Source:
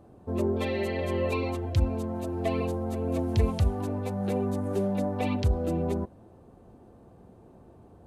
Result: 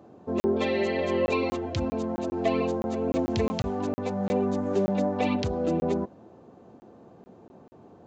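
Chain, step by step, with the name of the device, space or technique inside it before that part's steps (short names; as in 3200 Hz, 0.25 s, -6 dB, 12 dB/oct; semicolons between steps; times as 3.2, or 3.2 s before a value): call with lost packets (HPF 170 Hz 12 dB/oct; downsampling 16000 Hz; packet loss packets of 20 ms random); gain +4 dB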